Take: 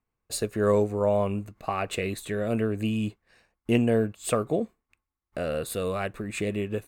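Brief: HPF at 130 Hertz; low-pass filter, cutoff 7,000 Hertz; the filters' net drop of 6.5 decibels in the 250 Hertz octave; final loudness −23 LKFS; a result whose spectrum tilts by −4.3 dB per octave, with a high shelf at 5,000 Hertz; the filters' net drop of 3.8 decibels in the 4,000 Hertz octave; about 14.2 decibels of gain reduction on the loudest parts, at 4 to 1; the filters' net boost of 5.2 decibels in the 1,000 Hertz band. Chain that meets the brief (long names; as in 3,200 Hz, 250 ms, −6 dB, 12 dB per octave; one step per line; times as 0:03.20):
high-pass filter 130 Hz
low-pass filter 7,000 Hz
parametric band 250 Hz −8 dB
parametric band 1,000 Hz +7.5 dB
parametric band 4,000 Hz −8.5 dB
high-shelf EQ 5,000 Hz +6.5 dB
downward compressor 4 to 1, threshold −36 dBFS
level +16.5 dB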